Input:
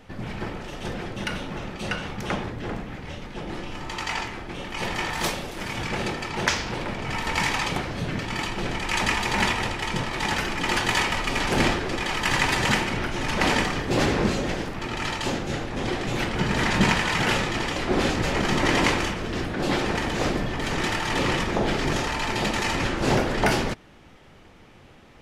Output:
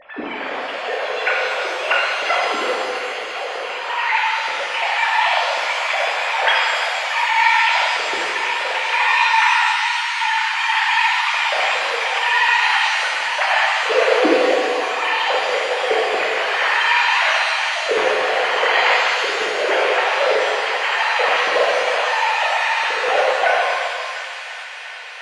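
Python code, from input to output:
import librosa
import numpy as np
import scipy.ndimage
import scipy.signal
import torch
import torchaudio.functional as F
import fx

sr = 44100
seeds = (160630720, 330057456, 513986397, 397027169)

p1 = fx.sine_speech(x, sr)
p2 = fx.rider(p1, sr, range_db=4, speed_s=2.0)
p3 = p2 + fx.echo_wet_highpass(p2, sr, ms=348, feedback_pct=85, hz=1600.0, wet_db=-11.5, dry=0)
p4 = fx.rev_shimmer(p3, sr, seeds[0], rt60_s=2.0, semitones=7, shimmer_db=-8, drr_db=-3.5)
y = F.gain(torch.from_numpy(p4), 1.0).numpy()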